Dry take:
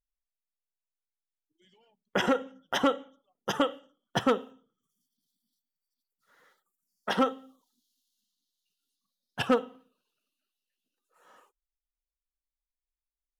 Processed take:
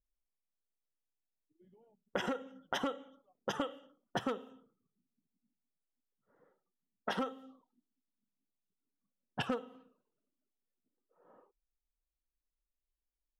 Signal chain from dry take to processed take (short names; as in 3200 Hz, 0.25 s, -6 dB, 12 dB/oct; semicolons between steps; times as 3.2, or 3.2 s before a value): low-pass opened by the level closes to 500 Hz, open at -27 dBFS; compressor 5:1, threshold -38 dBFS, peak gain reduction 16.5 dB; gain +3.5 dB